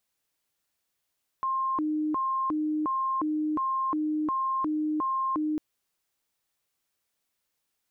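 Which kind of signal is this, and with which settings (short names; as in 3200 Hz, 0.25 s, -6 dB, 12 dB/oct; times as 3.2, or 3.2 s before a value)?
siren hi-lo 306–1060 Hz 1.4/s sine -25 dBFS 4.15 s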